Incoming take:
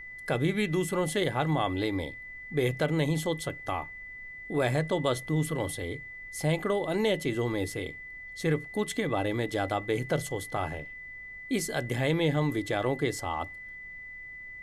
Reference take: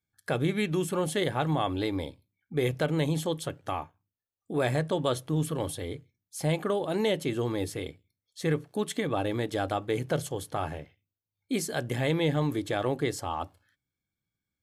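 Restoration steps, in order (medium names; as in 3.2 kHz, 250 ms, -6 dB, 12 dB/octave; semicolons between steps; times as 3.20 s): band-stop 2 kHz, Q 30; noise print and reduce 30 dB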